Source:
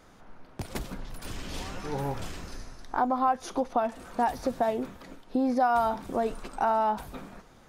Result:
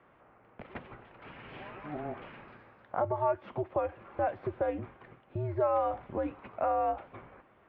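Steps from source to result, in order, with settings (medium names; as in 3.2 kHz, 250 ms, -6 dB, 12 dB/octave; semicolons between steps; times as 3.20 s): peaking EQ 150 Hz -10 dB 1.8 oct; mistuned SSB -150 Hz 210–2800 Hz; trim -3 dB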